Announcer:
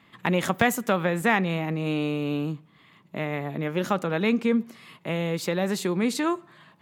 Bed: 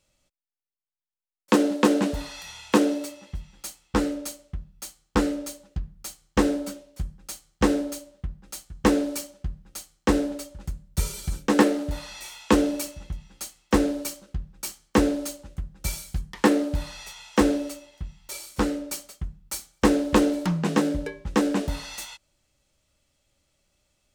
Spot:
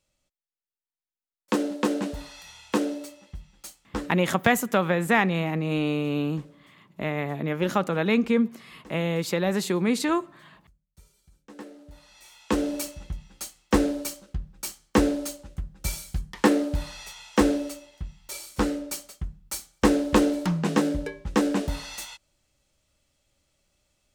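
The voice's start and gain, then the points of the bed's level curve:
3.85 s, +1.0 dB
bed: 3.91 s -5.5 dB
4.43 s -29.5 dB
11.33 s -29.5 dB
12.81 s -0.5 dB

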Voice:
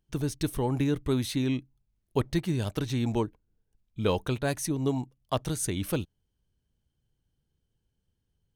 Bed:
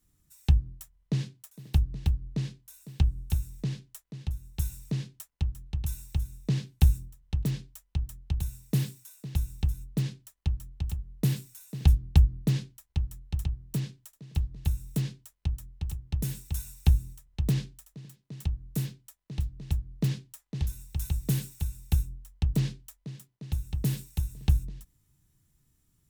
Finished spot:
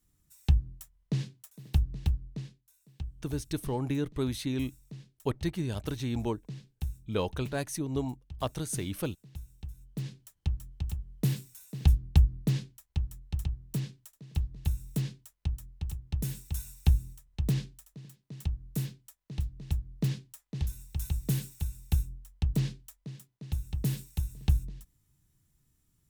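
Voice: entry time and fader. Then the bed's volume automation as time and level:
3.10 s, -4.0 dB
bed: 2.14 s -2 dB
2.65 s -14.5 dB
9.66 s -14.5 dB
10.27 s -2 dB

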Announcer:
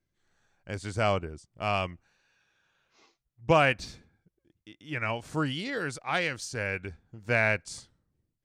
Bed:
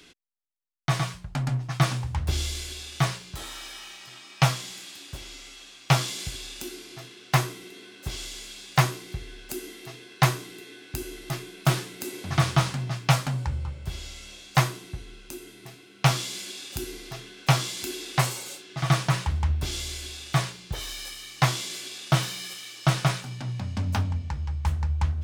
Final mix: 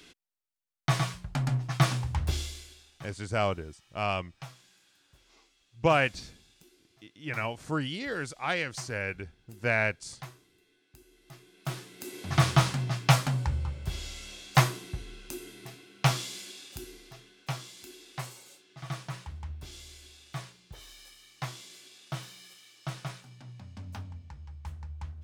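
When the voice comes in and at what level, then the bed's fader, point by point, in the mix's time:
2.35 s, -1.5 dB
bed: 2.25 s -1.5 dB
3.00 s -23.5 dB
11.06 s -23.5 dB
12.42 s -0.5 dB
15.62 s -0.5 dB
17.61 s -15 dB

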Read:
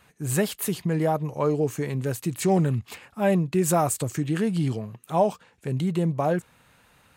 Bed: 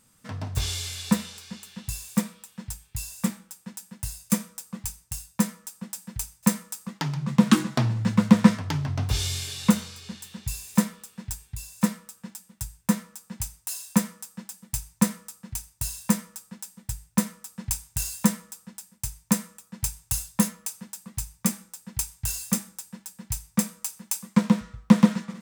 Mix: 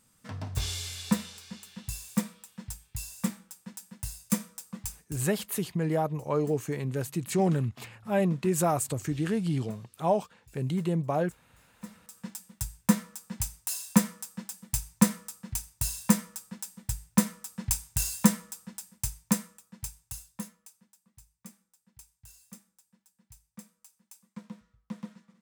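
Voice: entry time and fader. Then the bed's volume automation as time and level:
4.90 s, -4.0 dB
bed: 5.01 s -4 dB
5.44 s -27.5 dB
11.74 s -27.5 dB
12.18 s 0 dB
19.04 s 0 dB
21.01 s -24 dB

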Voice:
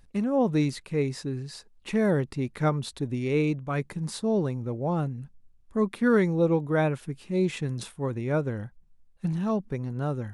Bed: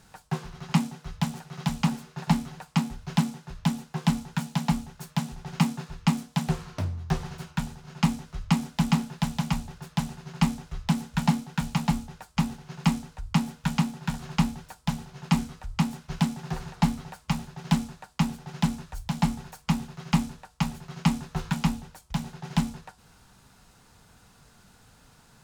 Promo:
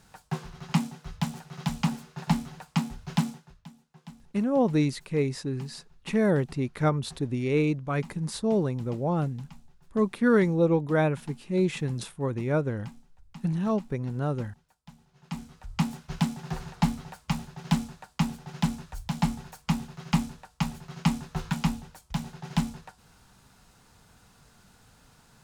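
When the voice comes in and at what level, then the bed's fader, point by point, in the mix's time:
4.20 s, +0.5 dB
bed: 3.31 s -2 dB
3.68 s -22.5 dB
14.94 s -22.5 dB
15.81 s -1.5 dB

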